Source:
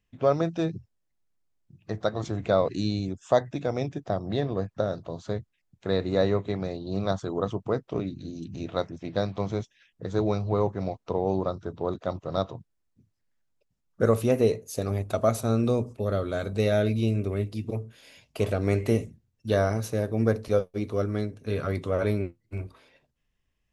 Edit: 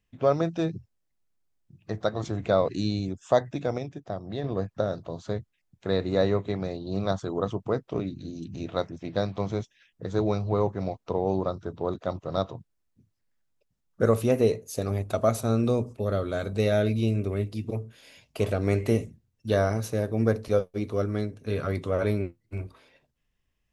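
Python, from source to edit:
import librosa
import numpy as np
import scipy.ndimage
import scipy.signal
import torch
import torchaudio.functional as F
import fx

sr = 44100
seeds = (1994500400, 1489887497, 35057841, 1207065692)

y = fx.edit(x, sr, fx.clip_gain(start_s=3.78, length_s=0.66, db=-5.5), tone=tone)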